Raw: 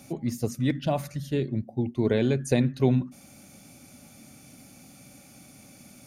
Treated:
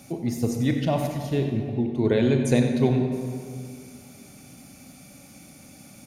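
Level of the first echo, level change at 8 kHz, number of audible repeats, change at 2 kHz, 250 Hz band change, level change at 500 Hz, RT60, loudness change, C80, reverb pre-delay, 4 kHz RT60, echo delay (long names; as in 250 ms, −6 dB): −12.0 dB, +2.5 dB, 1, +3.0 dB, +3.5 dB, +3.0 dB, 2.2 s, +2.5 dB, 5.5 dB, 27 ms, 1.4 s, 93 ms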